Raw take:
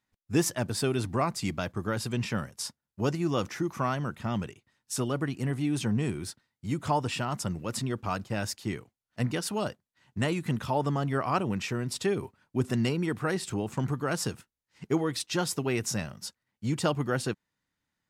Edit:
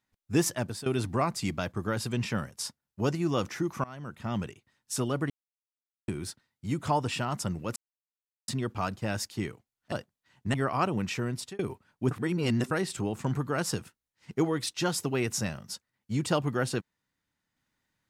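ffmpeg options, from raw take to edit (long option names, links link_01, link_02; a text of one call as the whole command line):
ffmpeg -i in.wav -filter_complex "[0:a]asplit=11[link_01][link_02][link_03][link_04][link_05][link_06][link_07][link_08][link_09][link_10][link_11];[link_01]atrim=end=0.86,asetpts=PTS-STARTPTS,afade=type=out:start_time=0.47:duration=0.39:curve=qsin:silence=0.149624[link_12];[link_02]atrim=start=0.86:end=3.84,asetpts=PTS-STARTPTS,afade=type=in:duration=0.004:curve=hsin:silence=0.149624,afade=type=out:start_time=2.976:duration=0.004:curve=hsin:silence=0.0707946[link_13];[link_03]atrim=start=3.84:end=5.3,asetpts=PTS-STARTPTS,afade=type=in:duration=0.57:silence=0.0707946,afade=type=out:start_time=1.456:duration=0.004:curve=hsin[link_14];[link_04]atrim=start=5.3:end=6.08,asetpts=PTS-STARTPTS,volume=0[link_15];[link_05]atrim=start=6.08:end=7.76,asetpts=PTS-STARTPTS,afade=type=in:duration=0.004:curve=hsin,afade=type=out:start_time=1.676:duration=0.004:curve=hsin,apad=pad_dur=0.72[link_16];[link_06]atrim=start=7.76:end=9.202,asetpts=PTS-STARTPTS,afade=type=in:duration=0.004:curve=hsin[link_17];[link_07]atrim=start=9.628:end=10.252[link_18];[link_08]atrim=start=11.068:end=12.12,asetpts=PTS-STARTPTS,afade=type=out:start_time=0.772:duration=0.28[link_19];[link_09]atrim=start=12.12:end=12.642,asetpts=PTS-STARTPTS,afade=type=in:duration=0.004:curve=hsin[link_20];[link_10]atrim=start=12.638:end=13.242,asetpts=PTS-STARTPTS,areverse[link_21];[link_11]atrim=start=13.238[link_22];[link_12][link_13][link_14][link_15][link_16][link_17]concat=n=6:v=0:a=1[link_23];[link_23][link_18]acrossfade=duration=0.004:curve1=hsin:curve2=hsin[link_24];[link_19][link_20]concat=n=2:v=0:a=1[link_25];[link_24][link_25]acrossfade=duration=0.004:curve1=hsin:curve2=hsin[link_26];[link_26][link_21]acrossfade=duration=0.004:curve1=hsin:curve2=hsin[link_27];[link_27][link_22]acrossfade=duration=0.004:curve1=hsin:curve2=hsin" out.wav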